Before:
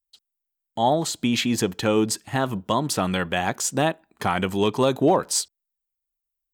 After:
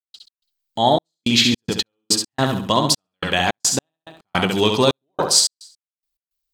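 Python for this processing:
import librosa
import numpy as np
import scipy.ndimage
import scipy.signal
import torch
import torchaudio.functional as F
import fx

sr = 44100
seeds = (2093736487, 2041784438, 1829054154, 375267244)

p1 = fx.peak_eq(x, sr, hz=4400.0, db=10.0, octaves=1.1)
p2 = p1 + fx.echo_feedback(p1, sr, ms=68, feedback_pct=38, wet_db=-5, dry=0)
p3 = fx.step_gate(p2, sr, bpm=107, pattern='.x.xxxx..xx.x.', floor_db=-60.0, edge_ms=4.5)
y = p3 * librosa.db_to_amplitude(3.0)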